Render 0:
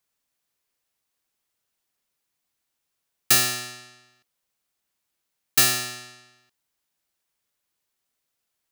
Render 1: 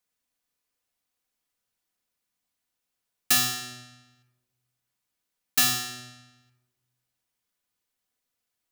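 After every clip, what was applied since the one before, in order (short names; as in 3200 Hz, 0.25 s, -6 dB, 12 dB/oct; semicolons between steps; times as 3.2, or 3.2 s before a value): shoebox room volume 2400 m³, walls furnished, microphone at 1.9 m; gain -4.5 dB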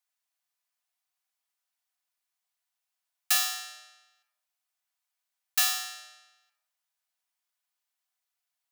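steep high-pass 620 Hz 48 dB/oct; gain -3 dB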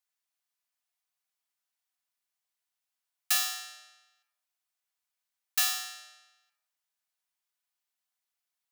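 low shelf 390 Hz -6.5 dB; gain -2 dB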